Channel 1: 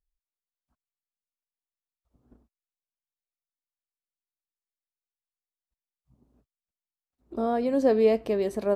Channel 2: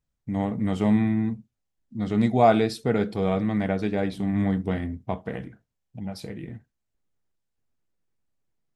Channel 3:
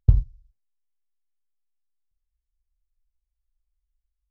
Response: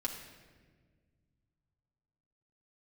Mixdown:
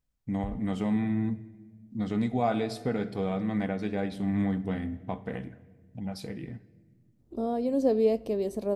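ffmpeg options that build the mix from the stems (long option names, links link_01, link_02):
-filter_complex "[0:a]equalizer=frequency=1600:width=0.8:gain=-12,volume=-2dB,asplit=2[link_01][link_02];[link_02]volume=-20dB[link_03];[1:a]volume=-3.5dB,asplit=3[link_04][link_05][link_06];[link_05]volume=-13dB[link_07];[2:a]adelay=350,volume=-2.5dB[link_08];[link_06]apad=whole_len=205722[link_09];[link_08][link_09]sidechaincompress=threshold=-32dB:ratio=8:attack=16:release=390[link_10];[link_04][link_10]amix=inputs=2:normalize=0,alimiter=limit=-21.5dB:level=0:latency=1:release=439,volume=0dB[link_11];[3:a]atrim=start_sample=2205[link_12];[link_03][link_07]amix=inputs=2:normalize=0[link_13];[link_13][link_12]afir=irnorm=-1:irlink=0[link_14];[link_01][link_11][link_14]amix=inputs=3:normalize=0"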